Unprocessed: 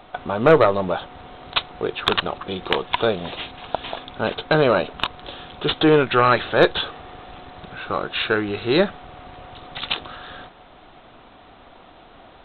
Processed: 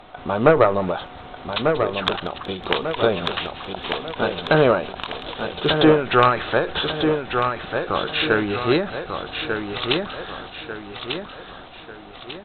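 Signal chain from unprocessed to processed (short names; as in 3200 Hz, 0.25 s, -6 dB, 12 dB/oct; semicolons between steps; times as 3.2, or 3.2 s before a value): thin delay 0.186 s, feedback 58%, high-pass 1900 Hz, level -17 dB; treble ducked by the level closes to 2700 Hz, closed at -14 dBFS; on a send: feedback echo 1.194 s, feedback 41%, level -6 dB; on the sum: ending taper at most 120 dB/s; gain +1.5 dB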